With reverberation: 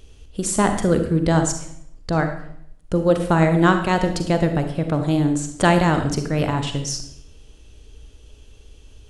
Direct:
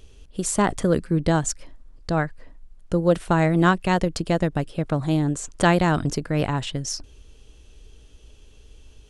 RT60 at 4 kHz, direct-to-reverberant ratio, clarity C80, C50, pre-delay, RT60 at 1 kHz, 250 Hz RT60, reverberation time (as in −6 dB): 0.60 s, 6.5 dB, 11.0 dB, 7.5 dB, 36 ms, 0.65 s, 0.80 s, 0.70 s